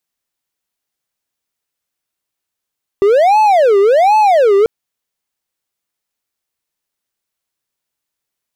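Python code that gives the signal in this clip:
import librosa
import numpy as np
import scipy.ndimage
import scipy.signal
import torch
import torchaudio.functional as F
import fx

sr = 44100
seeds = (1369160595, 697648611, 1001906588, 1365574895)

y = fx.siren(sr, length_s=1.64, kind='wail', low_hz=393.0, high_hz=866.0, per_s=1.3, wave='triangle', level_db=-4.5)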